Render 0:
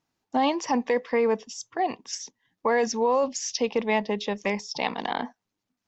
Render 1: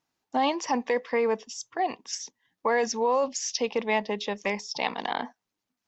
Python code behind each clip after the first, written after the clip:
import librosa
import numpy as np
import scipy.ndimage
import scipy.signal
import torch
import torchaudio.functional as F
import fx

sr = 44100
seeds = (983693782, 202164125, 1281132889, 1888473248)

y = fx.low_shelf(x, sr, hz=320.0, db=-6.5)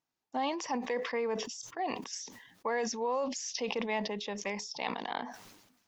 y = fx.sustainer(x, sr, db_per_s=58.0)
y = y * 10.0 ** (-8.0 / 20.0)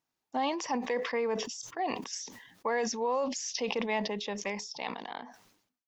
y = fx.fade_out_tail(x, sr, length_s=1.53)
y = y * 10.0 ** (2.0 / 20.0)